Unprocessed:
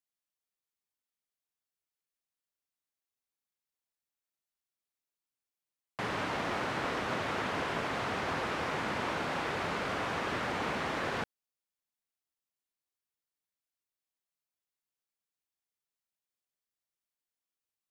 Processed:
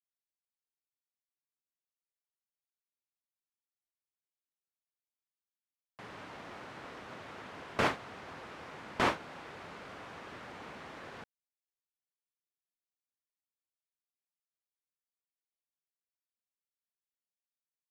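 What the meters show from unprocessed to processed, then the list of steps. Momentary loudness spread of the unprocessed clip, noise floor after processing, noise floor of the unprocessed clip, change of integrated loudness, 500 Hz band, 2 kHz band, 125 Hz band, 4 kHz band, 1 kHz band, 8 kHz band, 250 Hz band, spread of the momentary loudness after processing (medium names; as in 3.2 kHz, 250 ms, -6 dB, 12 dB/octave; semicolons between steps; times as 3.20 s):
2 LU, under -85 dBFS, under -85 dBFS, -5.5 dB, -6.0 dB, -6.0 dB, -7.0 dB, -6.0 dB, -5.5 dB, -6.0 dB, -6.0 dB, 16 LU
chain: gate with hold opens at -21 dBFS; trim +7.5 dB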